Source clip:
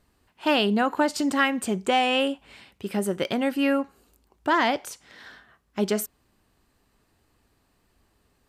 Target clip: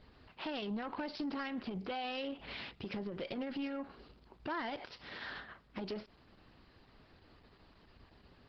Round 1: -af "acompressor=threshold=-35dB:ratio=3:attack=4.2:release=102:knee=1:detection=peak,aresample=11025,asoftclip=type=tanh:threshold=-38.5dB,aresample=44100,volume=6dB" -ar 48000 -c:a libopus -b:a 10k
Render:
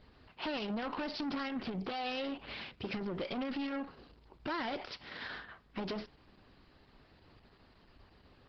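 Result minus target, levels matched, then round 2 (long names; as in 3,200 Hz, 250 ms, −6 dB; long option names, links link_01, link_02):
downward compressor: peak gain reduction −6.5 dB
-af "acompressor=threshold=-45dB:ratio=3:attack=4.2:release=102:knee=1:detection=peak,aresample=11025,asoftclip=type=tanh:threshold=-38.5dB,aresample=44100,volume=6dB" -ar 48000 -c:a libopus -b:a 10k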